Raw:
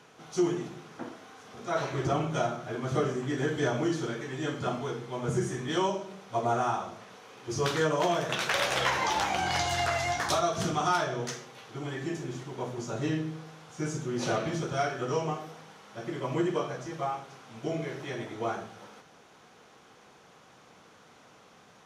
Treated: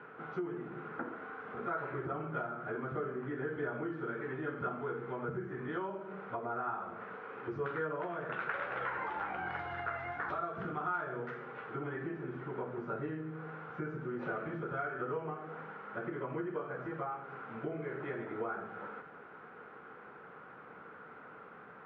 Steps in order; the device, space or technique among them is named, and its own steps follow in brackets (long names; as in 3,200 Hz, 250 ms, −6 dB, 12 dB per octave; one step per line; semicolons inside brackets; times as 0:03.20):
bass amplifier (downward compressor 5 to 1, threshold −40 dBFS, peak gain reduction 16.5 dB; loudspeaker in its box 75–2,100 Hz, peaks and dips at 110 Hz −6 dB, 440 Hz +5 dB, 660 Hz −3 dB, 1,400 Hz +10 dB)
level +2 dB